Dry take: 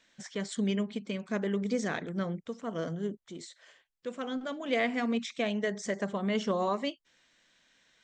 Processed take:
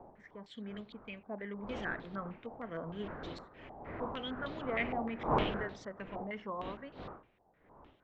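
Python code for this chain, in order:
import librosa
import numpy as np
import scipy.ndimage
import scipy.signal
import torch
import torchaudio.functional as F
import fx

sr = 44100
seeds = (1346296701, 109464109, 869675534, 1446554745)

y = fx.dmg_wind(x, sr, seeds[0], corner_hz=600.0, level_db=-34.0)
y = fx.doppler_pass(y, sr, speed_mps=6, closest_m=7.5, pass_at_s=3.62)
y = fx.filter_held_lowpass(y, sr, hz=6.5, low_hz=810.0, high_hz=3900.0)
y = F.gain(torch.from_numpy(y), -7.0).numpy()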